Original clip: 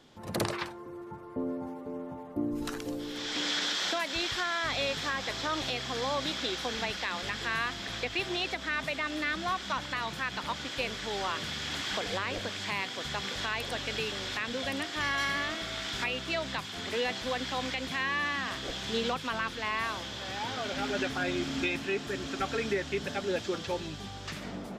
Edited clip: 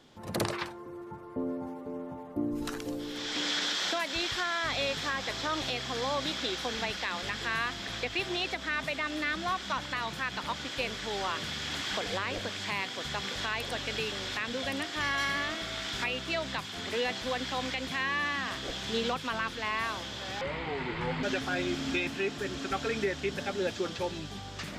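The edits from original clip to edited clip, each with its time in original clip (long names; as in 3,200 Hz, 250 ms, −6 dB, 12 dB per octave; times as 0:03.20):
0:20.41–0:20.92: play speed 62%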